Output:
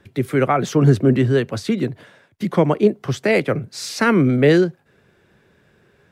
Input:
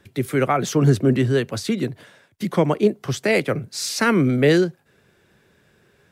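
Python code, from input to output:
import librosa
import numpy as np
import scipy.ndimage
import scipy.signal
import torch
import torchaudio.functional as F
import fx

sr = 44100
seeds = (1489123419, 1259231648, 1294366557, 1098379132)

y = fx.high_shelf(x, sr, hz=4100.0, db=-8.5)
y = F.gain(torch.from_numpy(y), 2.5).numpy()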